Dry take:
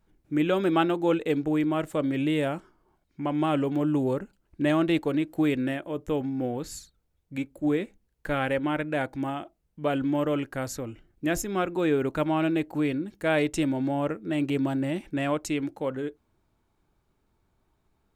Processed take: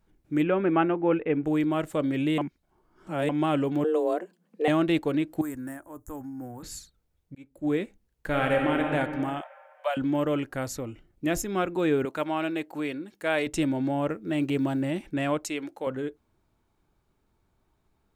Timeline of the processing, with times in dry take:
0.43–1.44 s: steep low-pass 2.6 kHz
2.38–3.29 s: reverse
3.84–4.68 s: frequency shift +160 Hz
5.41–6.63 s: FFT filter 110 Hz 0 dB, 160 Hz -21 dB, 270 Hz -7 dB, 450 Hz -17 dB, 920 Hz -4 dB, 1.7 kHz -7 dB, 2.4 kHz -21 dB, 3.4 kHz -25 dB, 6.3 kHz +3 dB, 11 kHz +9 dB
7.35–7.77 s: fade in
8.28–8.90 s: reverb throw, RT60 2.3 s, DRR 0.5 dB
9.41–9.97 s: steep high-pass 530 Hz 96 dB/octave
10.65–11.36 s: band-stop 1.6 kHz
12.05–13.47 s: high-pass 480 Hz 6 dB/octave
14.10–14.83 s: short-mantissa float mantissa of 6-bit
15.44–15.87 s: tone controls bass -15 dB, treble +1 dB

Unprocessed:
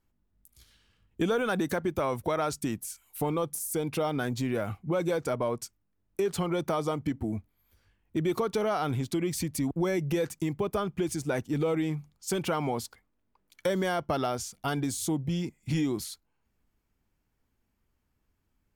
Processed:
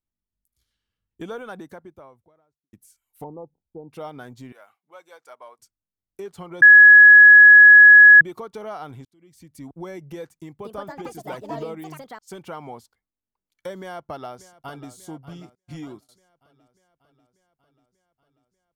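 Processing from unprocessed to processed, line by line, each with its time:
1.27–2.73 s: studio fade out
3.24–3.91 s: elliptic low-pass 870 Hz, stop band 60 dB
4.52–5.59 s: high-pass 840 Hz
6.62–8.21 s: bleep 1.68 kHz -6.5 dBFS
9.05–9.63 s: fade in
10.36–12.59 s: ever faster or slower copies 250 ms, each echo +6 st, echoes 2
13.79–14.90 s: echo throw 590 ms, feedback 70%, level -11.5 dB
15.55–16.09 s: gate -35 dBFS, range -26 dB
whole clip: band-stop 2.5 kHz, Q 21; dynamic bell 890 Hz, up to +5 dB, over -41 dBFS, Q 1; upward expansion 1.5:1, over -40 dBFS

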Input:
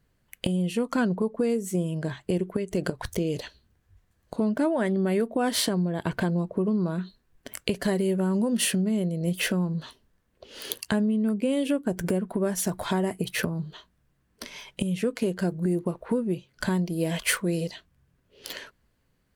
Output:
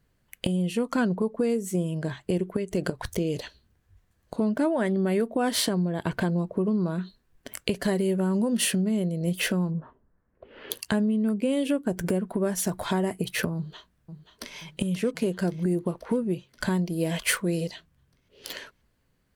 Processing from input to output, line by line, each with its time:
9.70–10.70 s: low-pass 1.1 kHz -> 2.5 kHz 24 dB/octave
13.55–14.57 s: echo throw 530 ms, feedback 65%, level -11 dB

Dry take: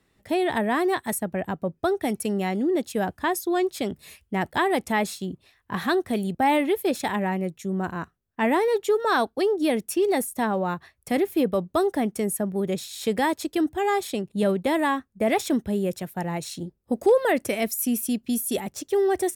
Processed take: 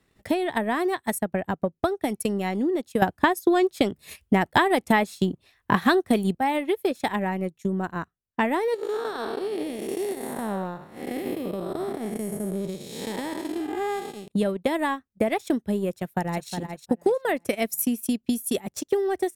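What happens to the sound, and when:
3.02–6.39 s: gain +11 dB
8.74–14.28 s: spectral blur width 309 ms
15.91–16.49 s: echo throw 360 ms, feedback 35%, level -6 dB
whole clip: transient shaper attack +8 dB, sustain -12 dB; compression 2.5:1, threshold -22 dBFS

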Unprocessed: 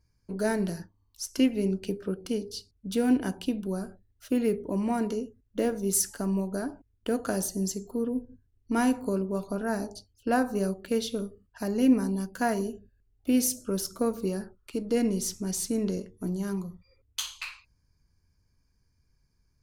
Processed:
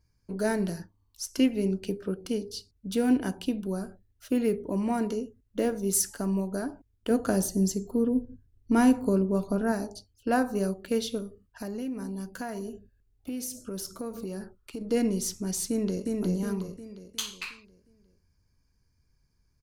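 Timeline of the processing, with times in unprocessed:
7.10–9.72 s: bass shelf 450 Hz +6 dB
11.18–14.81 s: compression 5:1, threshold -32 dBFS
15.69–16.17 s: echo throw 360 ms, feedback 45%, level -2 dB

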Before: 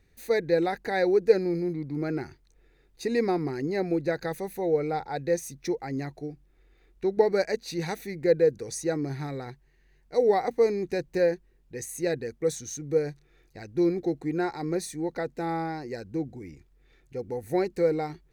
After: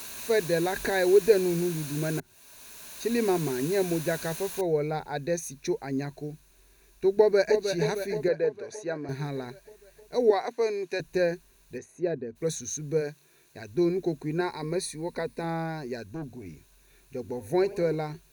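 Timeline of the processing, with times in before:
0.76–1.67 s: upward compressor, threshold -22 dBFS
2.20–3.28 s: fade in
4.61 s: noise floor step -41 dB -64 dB
7.16–7.63 s: echo throw 310 ms, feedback 65%, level -7.5 dB
8.28–9.09 s: band-pass filter 980 Hz, Q 0.54
10.30–11.00 s: frequency weighting A
11.77–12.35 s: band-pass filter 650 Hz -> 240 Hz, Q 0.57
13.00–13.68 s: high-pass 260 Hz -> 90 Hz
14.40–15.44 s: rippled EQ curve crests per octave 0.93, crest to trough 7 dB
16.03–16.46 s: valve stage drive 29 dB, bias 0.45
17.20–17.95 s: modulated delay 89 ms, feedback 75%, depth 138 cents, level -20 dB
whole clip: rippled EQ curve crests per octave 1.5, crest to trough 8 dB

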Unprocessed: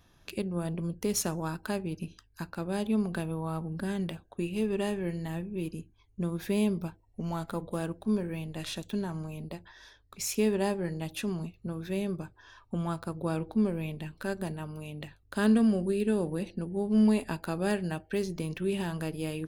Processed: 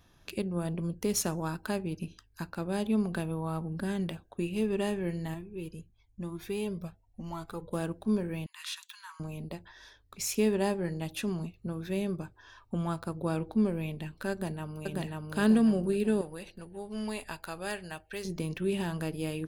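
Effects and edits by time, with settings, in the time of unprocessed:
5.34–7.73 s: Shepard-style flanger rising 1 Hz
8.46–9.20 s: steep high-pass 950 Hz 96 dB/octave
14.31–14.89 s: echo throw 540 ms, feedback 45%, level -0.5 dB
16.21–18.25 s: peaking EQ 220 Hz -14 dB 2.5 oct

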